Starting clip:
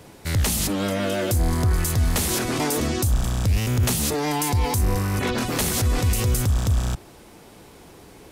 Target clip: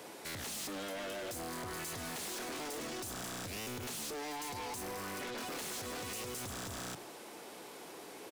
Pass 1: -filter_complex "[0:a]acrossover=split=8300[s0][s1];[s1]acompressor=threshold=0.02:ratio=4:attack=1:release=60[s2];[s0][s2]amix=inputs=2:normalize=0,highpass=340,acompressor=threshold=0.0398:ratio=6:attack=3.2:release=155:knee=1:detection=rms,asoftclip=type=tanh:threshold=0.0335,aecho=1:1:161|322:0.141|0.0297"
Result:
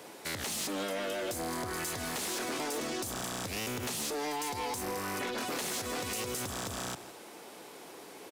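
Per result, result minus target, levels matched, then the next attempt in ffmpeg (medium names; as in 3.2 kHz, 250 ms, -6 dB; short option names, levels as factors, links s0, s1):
echo 57 ms late; saturation: distortion -8 dB
-filter_complex "[0:a]acrossover=split=8300[s0][s1];[s1]acompressor=threshold=0.02:ratio=4:attack=1:release=60[s2];[s0][s2]amix=inputs=2:normalize=0,highpass=340,acompressor=threshold=0.0398:ratio=6:attack=3.2:release=155:knee=1:detection=rms,asoftclip=type=tanh:threshold=0.0335,aecho=1:1:104|208:0.141|0.0297"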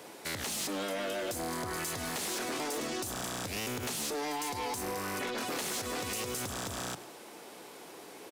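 saturation: distortion -8 dB
-filter_complex "[0:a]acrossover=split=8300[s0][s1];[s1]acompressor=threshold=0.02:ratio=4:attack=1:release=60[s2];[s0][s2]amix=inputs=2:normalize=0,highpass=340,acompressor=threshold=0.0398:ratio=6:attack=3.2:release=155:knee=1:detection=rms,asoftclip=type=tanh:threshold=0.0106,aecho=1:1:104|208:0.141|0.0297"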